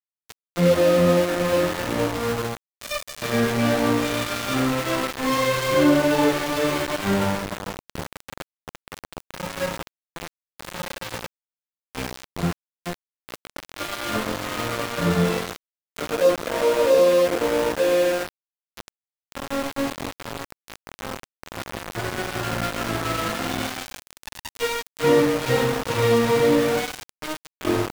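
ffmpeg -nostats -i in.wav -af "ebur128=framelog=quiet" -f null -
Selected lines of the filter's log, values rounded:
Integrated loudness:
  I:         -22.7 LUFS
  Threshold: -34.0 LUFS
Loudness range:
  LRA:        12.7 LU
  Threshold: -44.4 LUFS
  LRA low:   -33.7 LUFS
  LRA high:  -21.1 LUFS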